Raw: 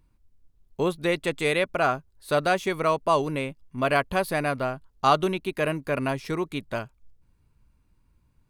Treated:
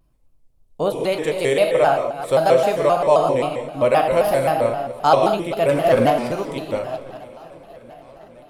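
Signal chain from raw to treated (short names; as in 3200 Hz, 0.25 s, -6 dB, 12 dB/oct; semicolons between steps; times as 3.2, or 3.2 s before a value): reverse delay 0.205 s, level -11 dB; fifteen-band EQ 630 Hz +10 dB, 1600 Hz -5 dB, 10000 Hz +4 dB; 5.69–6.1 sample leveller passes 2; on a send: swung echo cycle 1.147 s, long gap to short 1.5:1, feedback 53%, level -22.5 dB; on the sum: non-linear reverb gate 0.22 s flat, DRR 3 dB; shaped vibrato square 3.8 Hz, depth 160 cents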